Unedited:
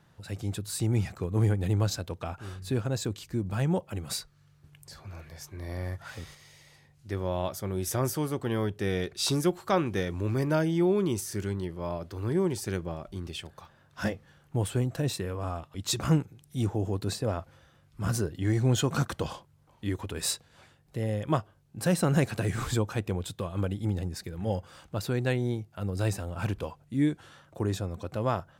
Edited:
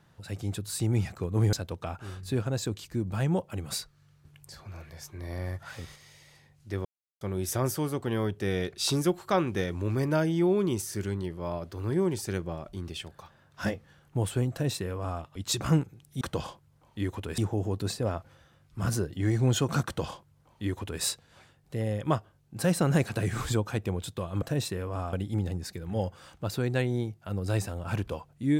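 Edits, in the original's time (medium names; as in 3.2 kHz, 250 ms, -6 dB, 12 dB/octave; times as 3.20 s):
1.53–1.92 s: delete
7.24–7.60 s: mute
14.90–15.61 s: copy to 23.64 s
19.07–20.24 s: copy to 16.60 s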